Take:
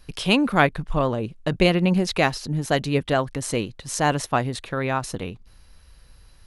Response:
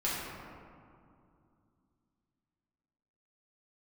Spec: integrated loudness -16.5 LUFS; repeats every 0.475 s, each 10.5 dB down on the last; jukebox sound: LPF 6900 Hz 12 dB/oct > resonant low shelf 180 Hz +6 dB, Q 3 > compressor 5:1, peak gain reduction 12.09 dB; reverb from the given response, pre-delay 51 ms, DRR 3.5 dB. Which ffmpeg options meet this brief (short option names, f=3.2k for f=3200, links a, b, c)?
-filter_complex "[0:a]aecho=1:1:475|950|1425:0.299|0.0896|0.0269,asplit=2[a][b];[1:a]atrim=start_sample=2205,adelay=51[c];[b][c]afir=irnorm=-1:irlink=0,volume=-11dB[d];[a][d]amix=inputs=2:normalize=0,lowpass=6.9k,lowshelf=f=180:t=q:w=3:g=6,acompressor=threshold=-22dB:ratio=5,volume=9.5dB"